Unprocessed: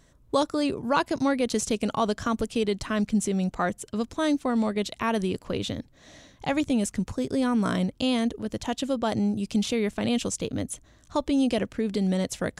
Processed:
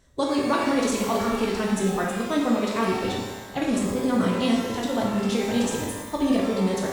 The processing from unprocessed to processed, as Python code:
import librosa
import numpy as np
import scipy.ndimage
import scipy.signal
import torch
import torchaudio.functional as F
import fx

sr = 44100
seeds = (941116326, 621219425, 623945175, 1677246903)

y = fx.stretch_vocoder(x, sr, factor=0.55)
y = fx.rev_shimmer(y, sr, seeds[0], rt60_s=1.1, semitones=12, shimmer_db=-8, drr_db=-2.0)
y = F.gain(torch.from_numpy(y), -1.0).numpy()